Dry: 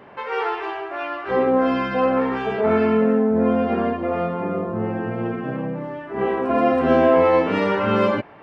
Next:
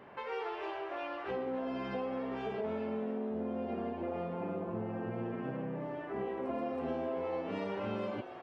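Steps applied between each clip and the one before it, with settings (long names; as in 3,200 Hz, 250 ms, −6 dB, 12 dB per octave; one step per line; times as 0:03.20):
dynamic equaliser 1,400 Hz, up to −7 dB, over −36 dBFS, Q 1.1
downward compressor, threshold −26 dBFS, peak gain reduction 12.5 dB
echo with shifted repeats 281 ms, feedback 47%, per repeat +150 Hz, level −11.5 dB
level −8.5 dB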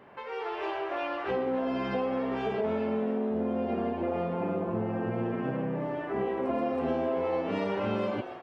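automatic gain control gain up to 7 dB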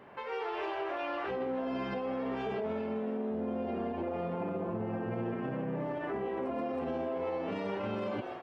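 brickwall limiter −27.5 dBFS, peak gain reduction 8 dB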